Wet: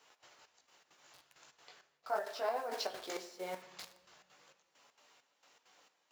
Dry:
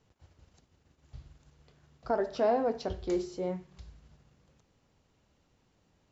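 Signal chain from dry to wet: chorus voices 4, 0.41 Hz, delay 18 ms, depth 3.8 ms; in parallel at -8 dB: bit crusher 8-bit; on the sum: trance gate "xx.xxx..." 199 bpm -12 dB; reverse; compression 8:1, threshold -41 dBFS, peak gain reduction 17.5 dB; reverse; high-pass 830 Hz 12 dB/octave; reverberation RT60 1.3 s, pre-delay 7 ms, DRR 12.5 dB; trim +14 dB

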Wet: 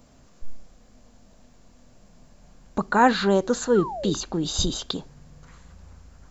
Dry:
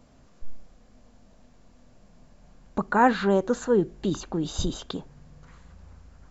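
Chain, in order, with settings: treble shelf 6 kHz +9.5 dB; painted sound fall, 3.75–4.14 s, 380–1500 Hz -34 dBFS; dynamic bell 4.3 kHz, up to +6 dB, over -51 dBFS, Q 1.8; trim +1.5 dB

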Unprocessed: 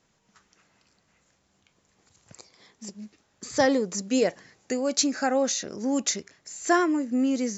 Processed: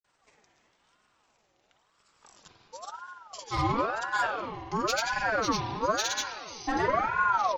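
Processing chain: pitch bend over the whole clip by -5.5 st starting unshifted; granulator 100 ms, spray 100 ms, pitch spread up and down by 0 st; saturation -20.5 dBFS, distortion -13 dB; comb 4.7 ms, depth 44%; spring tank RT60 2 s, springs 47 ms, chirp 75 ms, DRR 1 dB; ring modulator with a swept carrier 900 Hz, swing 40%, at 0.97 Hz

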